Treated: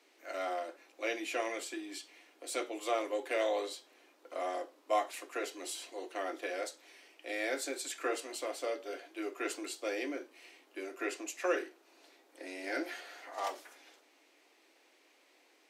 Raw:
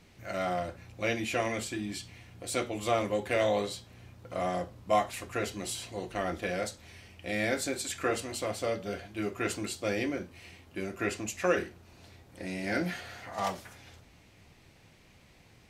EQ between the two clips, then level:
Butterworth high-pass 280 Hz 72 dB per octave
−4.5 dB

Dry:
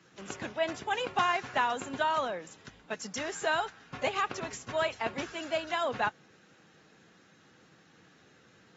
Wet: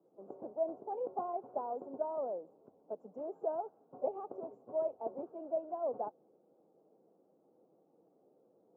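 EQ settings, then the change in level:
high-pass filter 450 Hz 12 dB per octave
inverse Chebyshev low-pass filter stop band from 1,700 Hz, stop band 50 dB
+1.0 dB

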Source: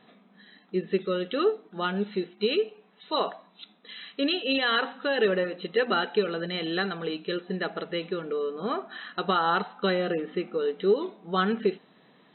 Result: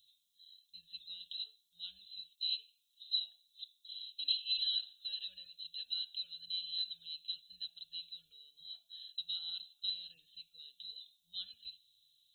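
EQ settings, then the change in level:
inverse Chebyshev band-stop filter 200–2,200 Hz, stop band 50 dB
tilt shelving filter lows −9 dB, about 1,400 Hz
low-shelf EQ 89 Hz −9 dB
+5.5 dB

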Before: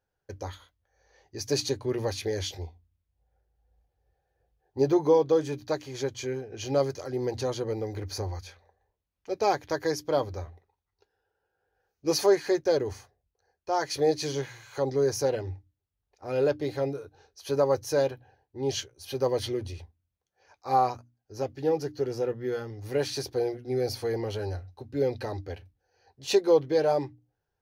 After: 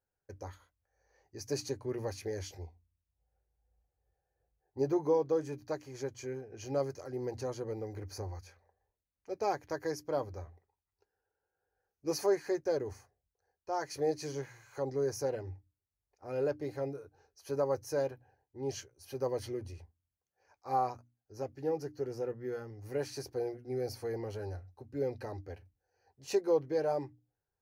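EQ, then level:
parametric band 3,500 Hz −12.5 dB 0.58 octaves
−7.5 dB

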